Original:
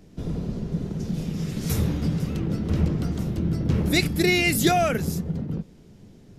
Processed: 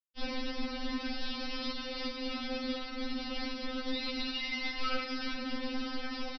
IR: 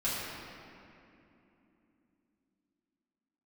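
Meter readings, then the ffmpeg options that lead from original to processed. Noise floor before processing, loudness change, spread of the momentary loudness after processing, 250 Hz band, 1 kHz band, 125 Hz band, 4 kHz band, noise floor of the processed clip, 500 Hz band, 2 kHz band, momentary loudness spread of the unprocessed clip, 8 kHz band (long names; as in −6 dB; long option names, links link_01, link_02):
−50 dBFS, −12.0 dB, 4 LU, −11.5 dB, −10.5 dB, below −30 dB, −4.0 dB, −41 dBFS, −12.5 dB, −9.5 dB, 11 LU, −22.5 dB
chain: -filter_complex "[0:a]adynamicequalizer=threshold=0.00708:dfrequency=1200:dqfactor=1.7:tfrequency=1200:tqfactor=1.7:attack=5:release=100:ratio=0.375:range=2.5:mode=cutabove:tftype=bell,aecho=1:1:5.3:0.41,areverse,acompressor=mode=upward:threshold=-31dB:ratio=2.5,areverse,crystalizer=i=7:c=0,acrossover=split=150[link_01][link_02];[link_02]acompressor=threshold=-28dB:ratio=10[link_03];[link_01][link_03]amix=inputs=2:normalize=0,bandreject=frequency=50:width_type=h:width=6,bandreject=frequency=100:width_type=h:width=6,bandreject=frequency=150:width_type=h:width=6,bandreject=frequency=200:width_type=h:width=6,bandreject=frequency=250:width_type=h:width=6,bandreject=frequency=300:width_type=h:width=6,bandreject=frequency=350:width_type=h:width=6[link_04];[1:a]atrim=start_sample=2205[link_05];[link_04][link_05]afir=irnorm=-1:irlink=0,aresample=11025,acrusher=bits=4:mix=0:aa=0.000001,aresample=44100,alimiter=limit=-12dB:level=0:latency=1:release=113,afftfilt=real='re*3.46*eq(mod(b,12),0)':imag='im*3.46*eq(mod(b,12),0)':win_size=2048:overlap=0.75,volume=-5.5dB"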